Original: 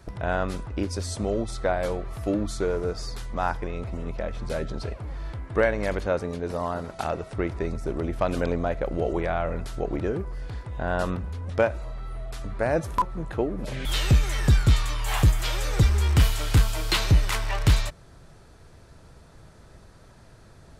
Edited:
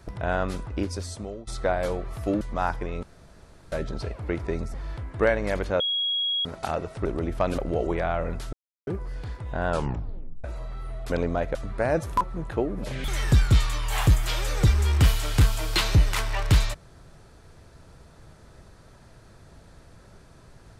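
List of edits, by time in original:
0:00.81–0:01.47: fade out, to −19.5 dB
0:02.41–0:03.22: remove
0:03.84–0:04.53: fill with room tone
0:06.16–0:06.81: beep over 3,310 Hz −23 dBFS
0:07.41–0:07.86: move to 0:05.10
0:08.39–0:08.84: move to 0:12.36
0:09.79–0:10.13: silence
0:10.95: tape stop 0.75 s
0:13.89–0:14.24: remove

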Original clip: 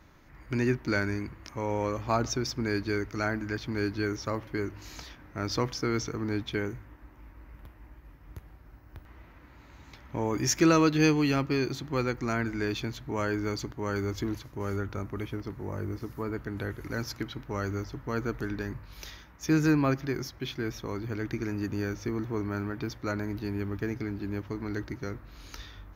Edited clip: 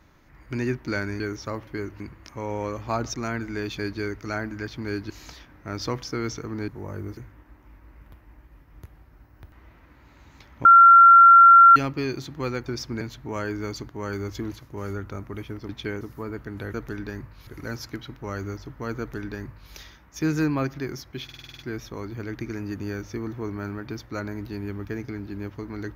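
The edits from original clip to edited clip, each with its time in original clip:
0:02.34–0:02.69: swap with 0:12.19–0:12.84
0:04.00–0:04.80: move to 0:01.20
0:06.38–0:06.70: swap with 0:15.52–0:16.01
0:10.18–0:11.29: beep over 1,370 Hz −7.5 dBFS
0:18.26–0:18.99: duplicate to 0:16.74
0:20.51: stutter 0.05 s, 8 plays

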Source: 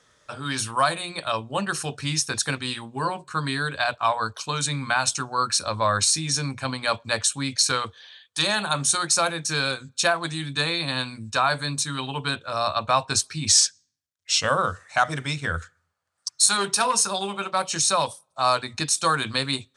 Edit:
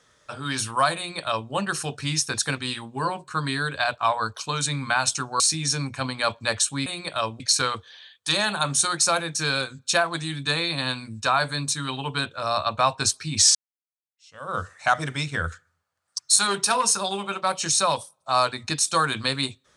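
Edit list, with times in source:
0:00.97–0:01.51: duplicate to 0:07.50
0:05.40–0:06.04: remove
0:13.65–0:14.69: fade in exponential

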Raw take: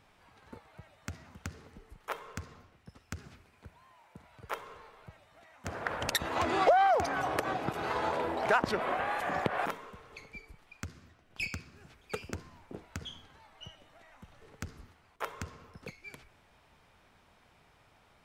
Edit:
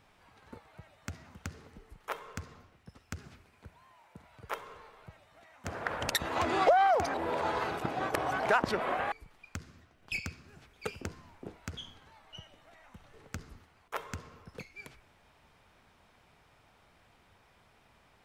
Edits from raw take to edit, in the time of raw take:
0:07.14–0:08.40: reverse
0:09.12–0:10.40: remove

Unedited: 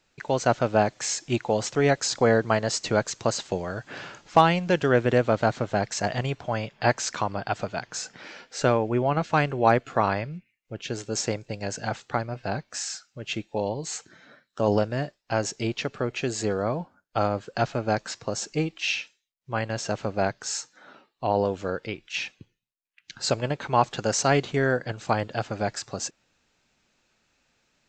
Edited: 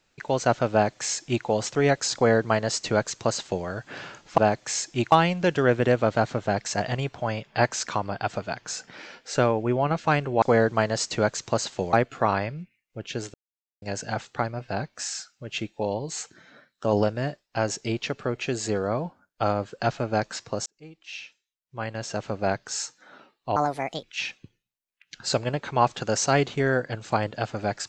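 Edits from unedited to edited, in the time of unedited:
0:00.72–0:01.46: duplicate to 0:04.38
0:02.15–0:03.66: duplicate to 0:09.68
0:11.09–0:11.57: silence
0:18.41–0:20.29: fade in
0:21.31–0:22.00: play speed 146%

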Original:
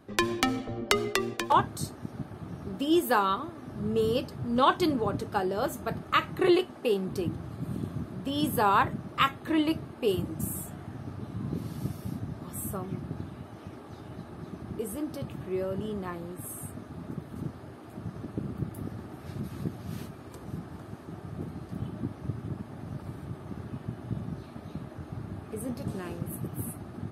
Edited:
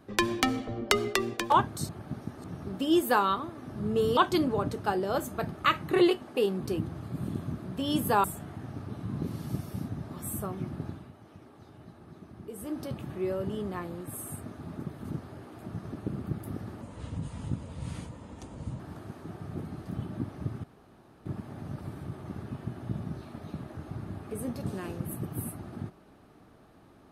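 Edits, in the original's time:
0:01.89–0:02.44: reverse
0:04.17–0:04.65: remove
0:08.72–0:10.55: remove
0:13.16–0:15.10: duck −8 dB, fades 0.27 s
0:19.12–0:20.63: play speed 76%
0:22.47: splice in room tone 0.62 s

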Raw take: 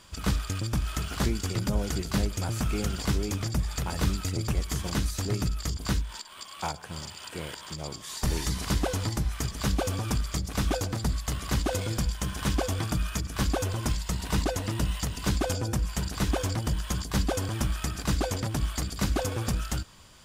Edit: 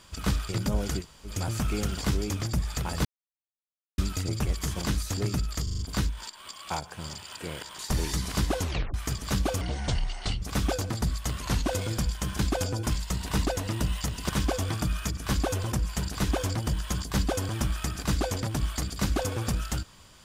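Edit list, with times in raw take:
0:00.49–0:01.50: remove
0:02.03–0:02.29: fill with room tone, crossfade 0.10 s
0:04.06: splice in silence 0.93 s
0:05.71: stutter 0.04 s, 5 plays
0:07.71–0:08.12: remove
0:08.95: tape stop 0.32 s
0:09.94–0:10.44: play speed 62%
0:11.43–0:11.68: play speed 91%
0:12.39–0:13.82: swap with 0:15.28–0:15.72

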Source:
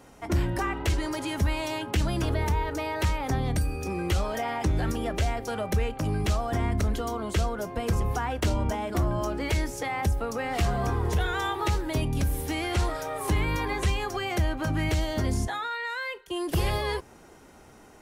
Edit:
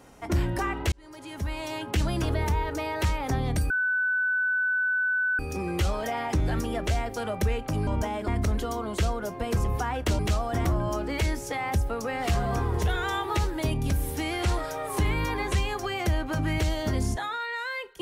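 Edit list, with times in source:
0:00.92–0:01.98: fade in
0:03.70: insert tone 1,500 Hz −22.5 dBFS 1.69 s
0:06.18–0:06.64: swap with 0:08.55–0:08.96

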